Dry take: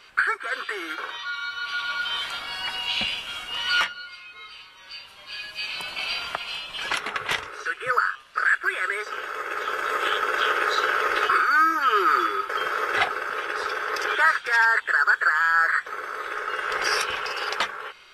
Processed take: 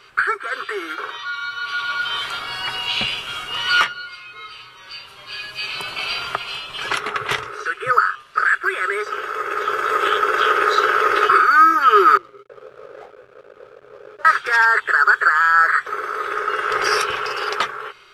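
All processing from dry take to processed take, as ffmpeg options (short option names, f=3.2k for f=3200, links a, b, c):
-filter_complex "[0:a]asettb=1/sr,asplit=3[a][b][c];[a]atrim=end=12.174[d];[b]atrim=start=12.17:end=14.25,asetpts=PTS-STARTPTS,afade=t=in:d=0.004:c=qsin,afade=t=out:st=2.076:d=0.004:c=qsin,flanger=delay=19:depth=6.3:speed=3,bandpass=f=530:t=q:w=6.5,aeval=exprs='sgn(val(0))*max(abs(val(0))-0.00355,0)':c=same[e];[c]atrim=start=14.246[f];[d][e]acrossfade=d=0.004:c1=hsin:c2=qsin[g];[g][f]acrossfade=d=0.004:c1=qsin:c2=hsin,equalizer=f=125:t=o:w=0.33:g=12,equalizer=f=400:t=o:w=0.33:g=9,equalizer=f=1.25k:t=o:w=0.33:g=6,dynaudnorm=f=750:g=5:m=3.5dB,volume=1dB"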